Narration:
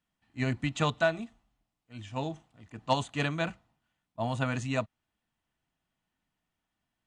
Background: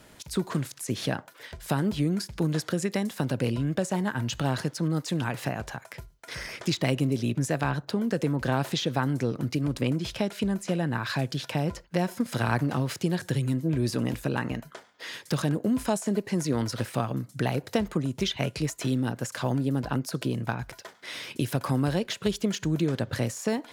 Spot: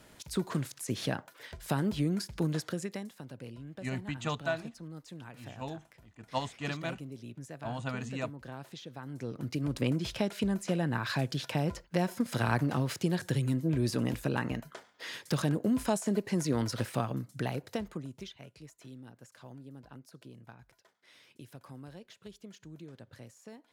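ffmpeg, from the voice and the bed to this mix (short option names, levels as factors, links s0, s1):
-filter_complex "[0:a]adelay=3450,volume=0.501[s0];[1:a]volume=3.55,afade=t=out:st=2.43:d=0.76:silence=0.199526,afade=t=in:st=9.03:d=0.83:silence=0.177828,afade=t=out:st=16.86:d=1.54:silence=0.112202[s1];[s0][s1]amix=inputs=2:normalize=0"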